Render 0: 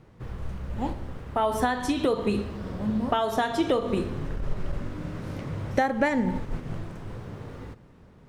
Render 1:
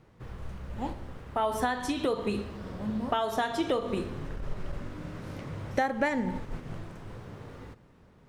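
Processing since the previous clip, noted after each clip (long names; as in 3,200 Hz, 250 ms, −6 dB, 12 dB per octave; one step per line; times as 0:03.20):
low-shelf EQ 460 Hz −3.5 dB
level −2.5 dB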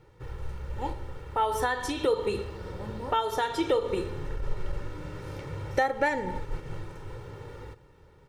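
comb filter 2.2 ms, depth 76%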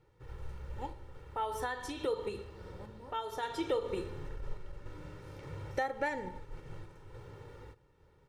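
sample-and-hold tremolo 3.5 Hz
level −7 dB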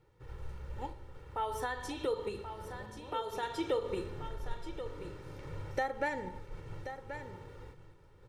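single-tap delay 1,081 ms −10 dB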